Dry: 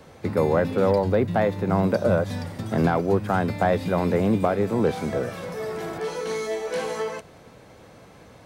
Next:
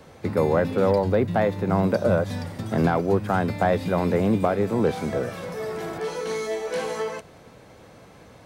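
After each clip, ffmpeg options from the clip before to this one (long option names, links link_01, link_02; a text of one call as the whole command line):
ffmpeg -i in.wav -af anull out.wav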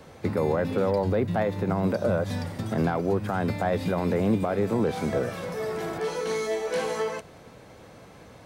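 ffmpeg -i in.wav -af "alimiter=limit=-15.5dB:level=0:latency=1:release=107" out.wav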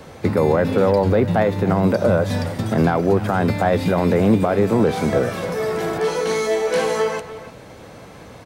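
ffmpeg -i in.wav -filter_complex "[0:a]asplit=2[link_01][link_02];[link_02]adelay=300,highpass=300,lowpass=3400,asoftclip=type=hard:threshold=-24.5dB,volume=-13dB[link_03];[link_01][link_03]amix=inputs=2:normalize=0,volume=8dB" out.wav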